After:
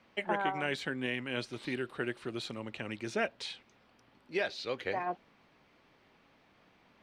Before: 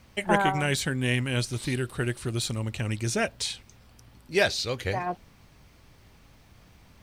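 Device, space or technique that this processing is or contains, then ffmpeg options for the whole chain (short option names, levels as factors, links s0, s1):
DJ mixer with the lows and highs turned down: -filter_complex "[0:a]acrossover=split=200 4000:gain=0.0891 1 0.112[s0][s1][s2];[s0][s1][s2]amix=inputs=3:normalize=0,alimiter=limit=0.158:level=0:latency=1:release=263,volume=0.631"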